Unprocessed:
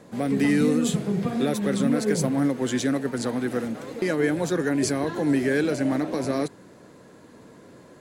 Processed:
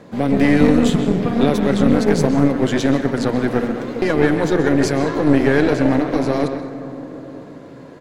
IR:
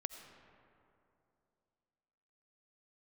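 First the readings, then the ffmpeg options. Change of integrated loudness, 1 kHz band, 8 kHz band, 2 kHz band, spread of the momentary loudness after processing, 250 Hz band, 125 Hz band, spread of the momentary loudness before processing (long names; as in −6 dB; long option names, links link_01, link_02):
+7.5 dB, +9.5 dB, −0.5 dB, +7.0 dB, 15 LU, +7.5 dB, +8.5 dB, 6 LU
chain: -filter_complex "[0:a]asplit=2[link_01][link_02];[link_02]adelay=130,highpass=300,lowpass=3400,asoftclip=type=hard:threshold=-20dB,volume=-8dB[link_03];[link_01][link_03]amix=inputs=2:normalize=0,asplit=2[link_04][link_05];[1:a]atrim=start_sample=2205,asetrate=24696,aresample=44100,lowpass=5900[link_06];[link_05][link_06]afir=irnorm=-1:irlink=0,volume=2.5dB[link_07];[link_04][link_07]amix=inputs=2:normalize=0,aeval=exprs='0.841*(cos(1*acos(clip(val(0)/0.841,-1,1)))-cos(1*PI/2))+0.133*(cos(4*acos(clip(val(0)/0.841,-1,1)))-cos(4*PI/2))':channel_layout=same,volume=-1dB"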